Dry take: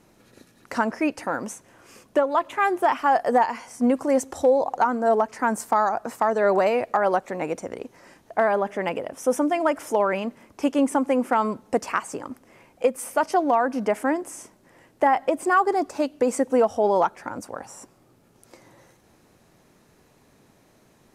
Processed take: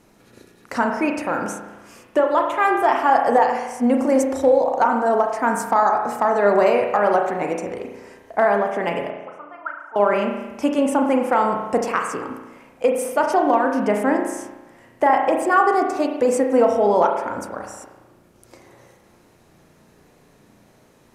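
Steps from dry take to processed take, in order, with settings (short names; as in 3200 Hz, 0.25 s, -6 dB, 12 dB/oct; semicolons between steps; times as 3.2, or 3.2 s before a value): 9.1–9.96 auto-wah 600–1500 Hz, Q 10, up, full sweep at -16.5 dBFS; spring tank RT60 1.1 s, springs 34 ms, chirp 75 ms, DRR 2.5 dB; gain +2 dB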